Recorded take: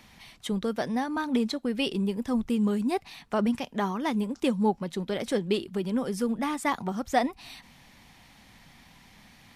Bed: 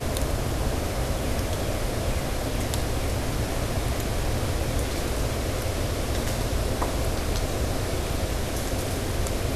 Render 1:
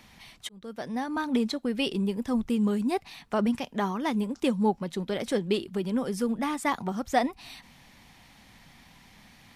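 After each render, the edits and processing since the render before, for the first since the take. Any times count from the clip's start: 0.49–1.17 s: fade in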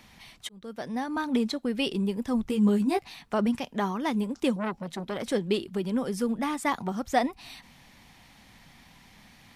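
2.46–3.14 s: doubling 15 ms -4 dB; 4.56–5.23 s: transformer saturation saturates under 1.3 kHz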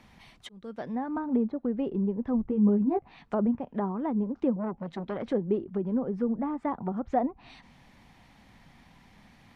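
low-pass that closes with the level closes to 910 Hz, closed at -25.5 dBFS; treble shelf 2.5 kHz -10.5 dB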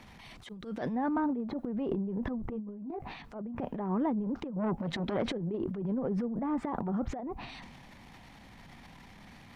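compressor with a negative ratio -31 dBFS, ratio -0.5; transient shaper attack -11 dB, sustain +9 dB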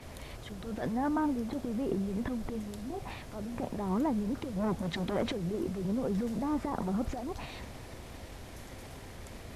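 add bed -20 dB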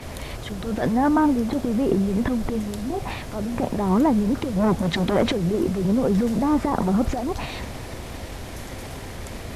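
trim +11.5 dB

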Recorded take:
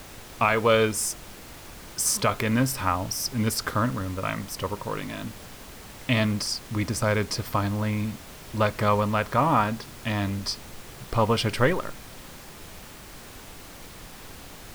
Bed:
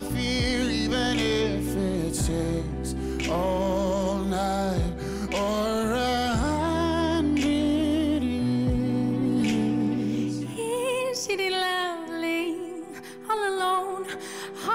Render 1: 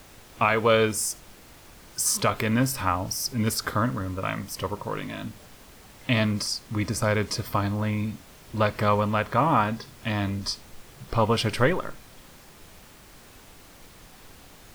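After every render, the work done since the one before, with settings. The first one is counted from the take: noise print and reduce 6 dB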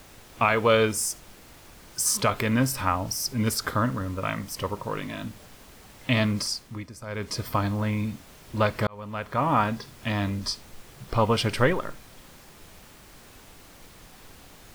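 6.49–7.44 s: dip -15 dB, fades 0.38 s; 8.87–9.63 s: fade in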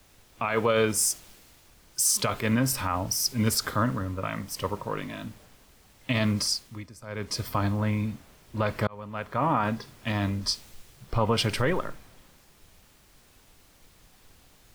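peak limiter -16 dBFS, peak gain reduction 8 dB; three bands expanded up and down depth 40%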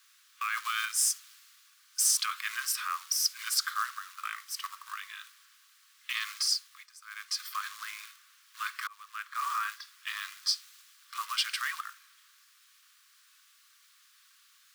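short-mantissa float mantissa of 2-bit; rippled Chebyshev high-pass 1.1 kHz, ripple 3 dB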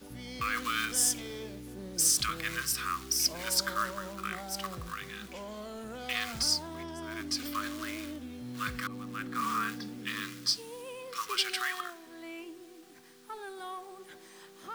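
add bed -17 dB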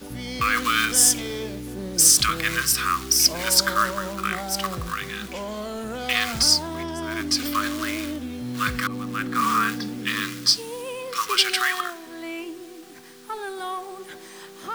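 trim +10.5 dB

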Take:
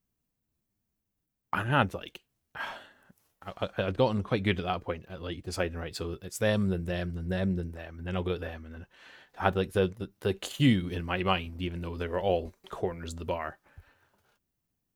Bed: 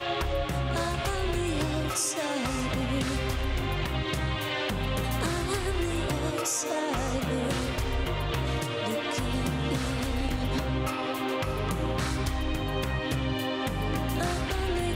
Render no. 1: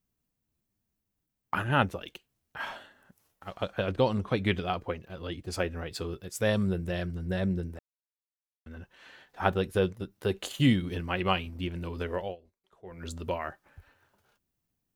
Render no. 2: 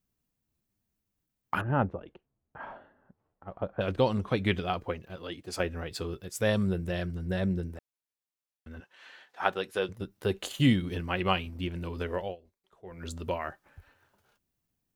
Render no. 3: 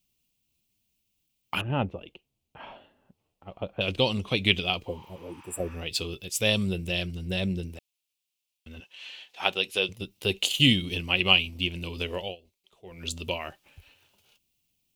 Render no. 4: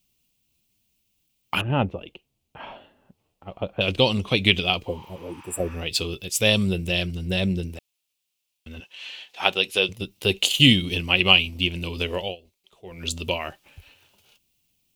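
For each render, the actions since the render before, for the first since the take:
7.79–8.66 s: mute; 12.13–13.06 s: dip -24 dB, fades 0.23 s
1.61–3.81 s: low-pass 1 kHz; 5.16–5.60 s: high-pass 270 Hz 6 dB/octave; 8.80–9.89 s: frequency weighting A
4.90–5.73 s: spectral replace 790–7200 Hz both; resonant high shelf 2.1 kHz +8.5 dB, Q 3
trim +5 dB; peak limiter -1 dBFS, peak gain reduction 2 dB

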